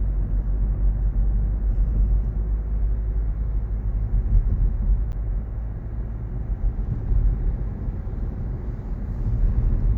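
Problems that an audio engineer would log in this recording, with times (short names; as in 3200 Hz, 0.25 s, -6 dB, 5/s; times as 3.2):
5.12–5.13 gap 9.5 ms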